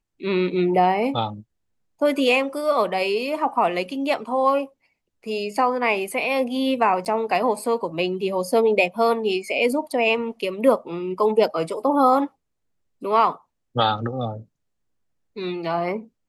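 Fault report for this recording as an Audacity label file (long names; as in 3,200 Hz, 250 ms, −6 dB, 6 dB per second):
7.050000	7.060000	drop-out 9.2 ms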